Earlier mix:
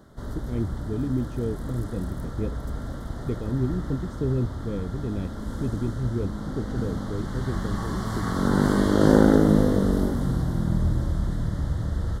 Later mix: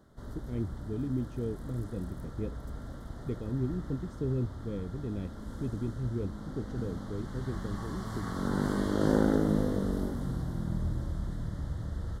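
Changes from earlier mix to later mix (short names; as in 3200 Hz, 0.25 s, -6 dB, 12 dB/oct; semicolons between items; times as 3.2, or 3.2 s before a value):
speech -6.0 dB; background -9.0 dB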